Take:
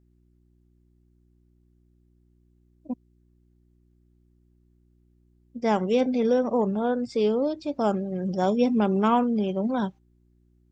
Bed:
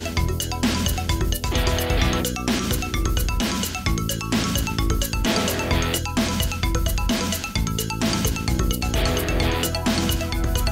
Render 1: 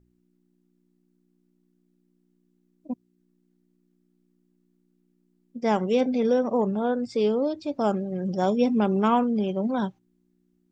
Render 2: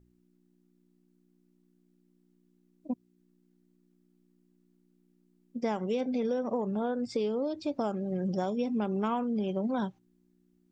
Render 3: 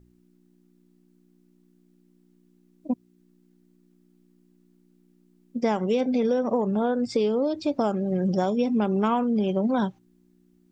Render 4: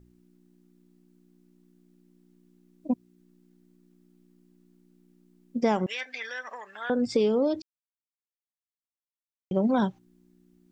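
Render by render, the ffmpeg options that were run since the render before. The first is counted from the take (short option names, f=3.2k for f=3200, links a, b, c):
-af "bandreject=f=60:t=h:w=4,bandreject=f=120:t=h:w=4"
-af "acompressor=threshold=-27dB:ratio=10"
-af "volume=7dB"
-filter_complex "[0:a]asettb=1/sr,asplit=3[a][b][c];[a]atrim=end=5.864[d];[b]atrim=start=5.86:end=6.9,asetpts=PTS-STARTPTS,afade=t=in:d=0.004:c=qsin,afade=t=out:st=1.036:d=0.004:c=qsin,highpass=f=1.8k:t=q:w=8.5[e];[c]atrim=start=6.896[f];[d][e]acrossfade=d=0.004:c1=hsin:c2=qsin[g];[g][f]acrossfade=d=0.004:c1=qsin:c2=hsin,asplit=3[h][i][j];[h]atrim=end=7.62,asetpts=PTS-STARTPTS,afade=t=out:st=7.616:d=0.004:c=hsin[k];[i]atrim=start=7.62:end=9.51,asetpts=PTS-STARTPTS,volume=0[l];[j]atrim=start=9.51,asetpts=PTS-STARTPTS,afade=t=in:d=0.004:c=hsin[m];[k][l][m]concat=n=3:v=0:a=1"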